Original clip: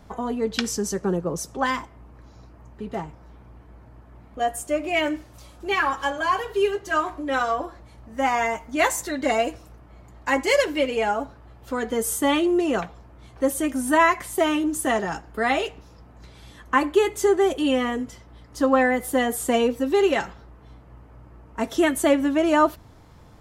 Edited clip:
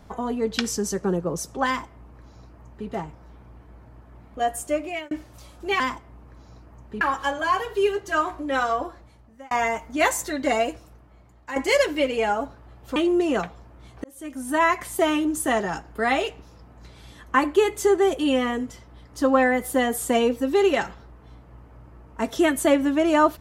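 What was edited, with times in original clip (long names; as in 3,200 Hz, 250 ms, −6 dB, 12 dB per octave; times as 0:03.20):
0:01.67–0:02.88: duplicate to 0:05.80
0:04.73–0:05.11: fade out
0:07.62–0:08.30: fade out
0:09.29–0:10.35: fade out, to −11 dB
0:11.75–0:12.35: remove
0:13.43–0:14.23: fade in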